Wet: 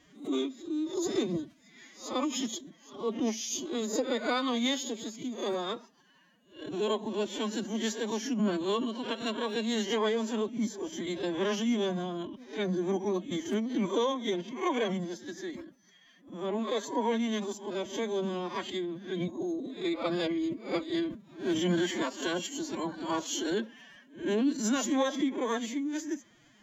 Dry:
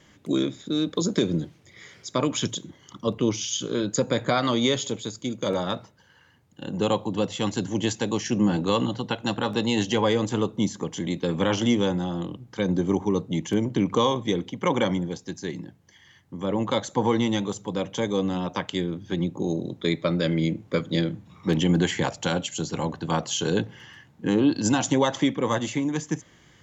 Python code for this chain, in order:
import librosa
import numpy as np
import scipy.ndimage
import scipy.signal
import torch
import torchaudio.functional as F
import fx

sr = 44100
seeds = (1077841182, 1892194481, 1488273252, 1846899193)

y = fx.spec_swells(x, sr, rise_s=0.36)
y = fx.pitch_keep_formants(y, sr, semitones=12.0)
y = y * librosa.db_to_amplitude(-7.0)